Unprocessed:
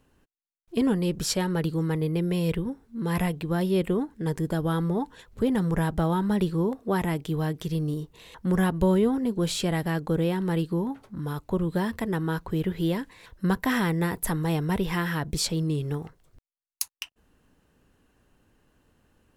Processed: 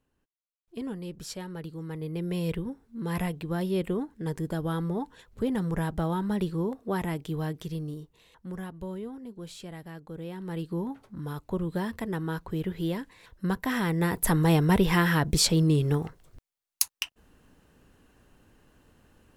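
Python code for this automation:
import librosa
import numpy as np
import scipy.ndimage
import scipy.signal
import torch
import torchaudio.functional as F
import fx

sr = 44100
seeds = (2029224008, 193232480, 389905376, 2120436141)

y = fx.gain(x, sr, db=fx.line((1.78, -12.0), (2.36, -4.0), (7.53, -4.0), (8.7, -15.5), (10.12, -15.5), (10.8, -4.0), (13.73, -4.0), (14.38, 4.5)))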